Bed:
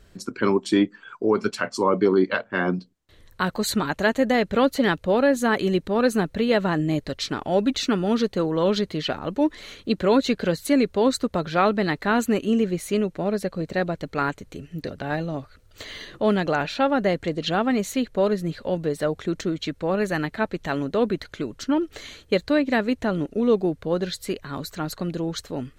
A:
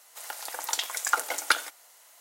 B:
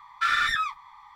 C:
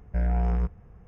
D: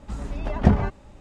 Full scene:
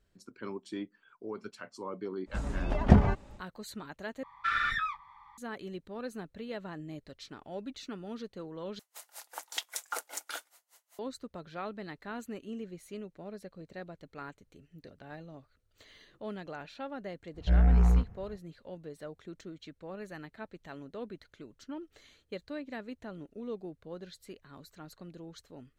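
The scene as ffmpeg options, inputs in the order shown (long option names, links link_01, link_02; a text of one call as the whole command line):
ffmpeg -i bed.wav -i cue0.wav -i cue1.wav -i cue2.wav -i cue3.wav -filter_complex "[0:a]volume=-19.5dB[link_01];[2:a]bass=frequency=250:gain=6,treble=frequency=4000:gain=-12[link_02];[1:a]aeval=exprs='val(0)*pow(10,-31*(0.5-0.5*cos(2*PI*5.1*n/s))/20)':channel_layout=same[link_03];[3:a]asplit=2[link_04][link_05];[link_05]adelay=33,volume=-3dB[link_06];[link_04][link_06]amix=inputs=2:normalize=0[link_07];[link_01]asplit=3[link_08][link_09][link_10];[link_08]atrim=end=4.234[link_11];[link_02]atrim=end=1.15,asetpts=PTS-STARTPTS,volume=-5.5dB[link_12];[link_09]atrim=start=5.376:end=8.794[link_13];[link_03]atrim=end=2.2,asetpts=PTS-STARTPTS,volume=-3dB[link_14];[link_10]atrim=start=10.986[link_15];[4:a]atrim=end=1.2,asetpts=PTS-STARTPTS,volume=-2.5dB,afade=type=in:duration=0.1,afade=type=out:start_time=1.1:duration=0.1,adelay=2250[link_16];[link_07]atrim=end=1.07,asetpts=PTS-STARTPTS,volume=-2dB,afade=type=in:duration=0.05,afade=type=out:start_time=1.02:duration=0.05,adelay=17330[link_17];[link_11][link_12]acrossfade=duration=0.004:curve1=hsin:curve2=hsin[link_18];[link_18][link_13]acrossfade=duration=0.004:curve1=hsin:curve2=hsin[link_19];[link_19][link_14]acrossfade=duration=0.004:curve1=hsin:curve2=hsin[link_20];[link_20][link_15]acrossfade=duration=0.004:curve1=hsin:curve2=hsin[link_21];[link_21][link_16][link_17]amix=inputs=3:normalize=0" out.wav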